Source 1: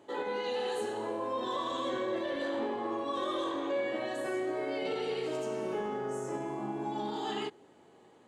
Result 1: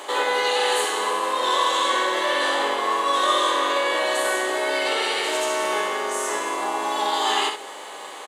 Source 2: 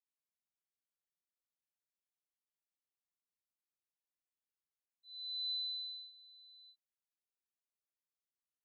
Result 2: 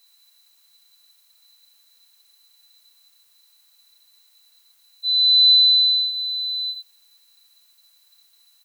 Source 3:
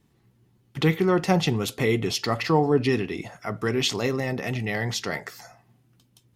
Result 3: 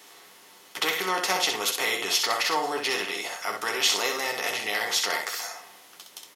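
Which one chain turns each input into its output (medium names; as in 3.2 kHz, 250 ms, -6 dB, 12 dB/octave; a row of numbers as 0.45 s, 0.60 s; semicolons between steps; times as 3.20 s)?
spectral levelling over time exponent 0.6; high-pass 770 Hz 12 dB/octave; treble shelf 7 kHz +9 dB; early reflections 10 ms -5.5 dB, 64 ms -5 dB; peak normalisation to -9 dBFS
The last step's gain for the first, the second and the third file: +11.5 dB, +23.5 dB, -2.5 dB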